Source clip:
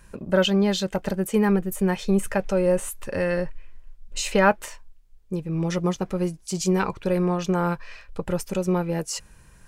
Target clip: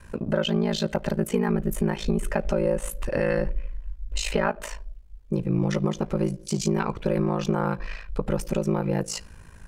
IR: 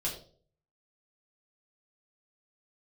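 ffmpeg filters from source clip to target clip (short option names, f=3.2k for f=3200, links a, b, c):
-filter_complex "[0:a]asplit=2[a][b];[1:a]atrim=start_sample=2205[c];[b][c]afir=irnorm=-1:irlink=0,volume=-23.5dB[d];[a][d]amix=inputs=2:normalize=0,acompressor=threshold=-22dB:ratio=6,aeval=exprs='val(0)*sin(2*PI*27*n/s)':c=same,asplit=2[e][f];[f]alimiter=level_in=1dB:limit=-24dB:level=0:latency=1:release=86,volume=-1dB,volume=-1dB[g];[e][g]amix=inputs=2:normalize=0,highshelf=f=4.4k:g=-7.5,volume=2dB"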